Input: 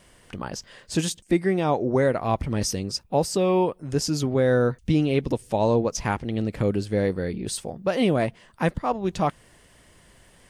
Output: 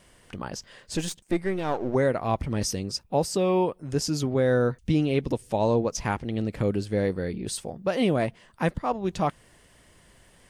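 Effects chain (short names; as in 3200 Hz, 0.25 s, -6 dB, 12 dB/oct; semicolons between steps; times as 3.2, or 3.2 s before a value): 0.96–1.95 half-wave gain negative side -7 dB; gain -2 dB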